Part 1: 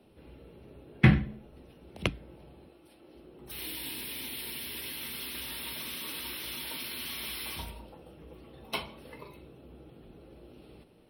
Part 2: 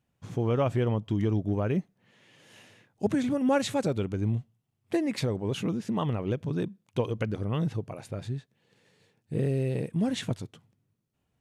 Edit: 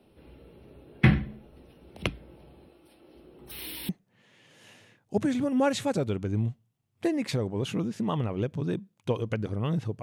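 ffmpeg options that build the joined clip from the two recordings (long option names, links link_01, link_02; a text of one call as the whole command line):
ffmpeg -i cue0.wav -i cue1.wav -filter_complex "[0:a]apad=whole_dur=10.02,atrim=end=10.02,atrim=end=3.892[link_01];[1:a]atrim=start=1.778:end=7.91[link_02];[link_01][link_02]acrossfade=duration=0.004:curve1=hsin:curve2=hsin" out.wav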